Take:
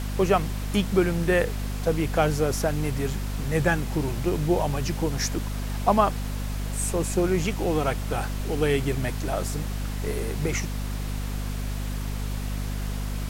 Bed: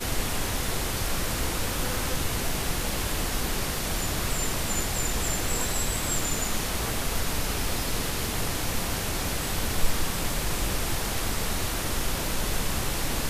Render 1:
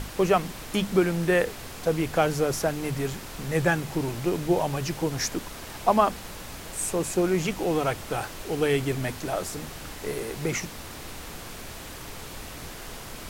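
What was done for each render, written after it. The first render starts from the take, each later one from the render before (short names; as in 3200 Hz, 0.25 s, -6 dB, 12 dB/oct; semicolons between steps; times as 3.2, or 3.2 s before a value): notches 50/100/150/200/250 Hz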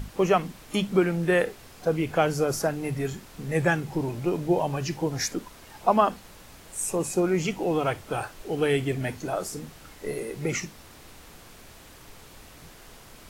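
noise print and reduce 9 dB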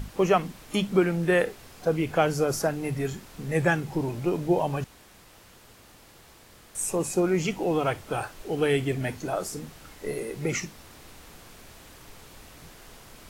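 4.84–6.75 room tone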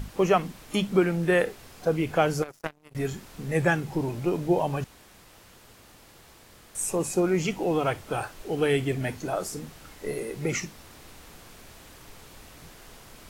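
2.42–2.95 power-law curve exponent 3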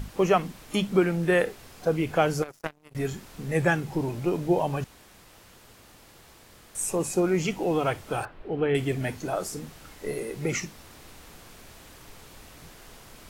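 8.25–8.75 air absorption 440 m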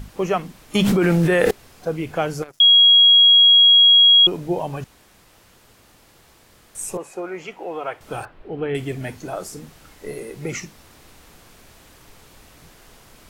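0.75–1.51 fast leveller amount 100%; 2.6–4.27 bleep 3300 Hz -8 dBFS; 6.97–8.01 three-band isolator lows -18 dB, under 410 Hz, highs -13 dB, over 2800 Hz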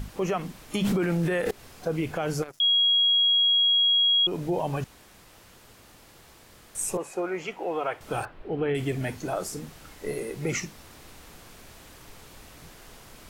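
compressor 4:1, threshold -18 dBFS, peak gain reduction 7 dB; limiter -18 dBFS, peak gain reduction 9 dB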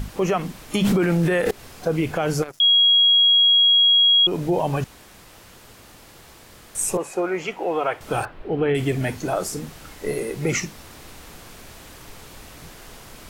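gain +6 dB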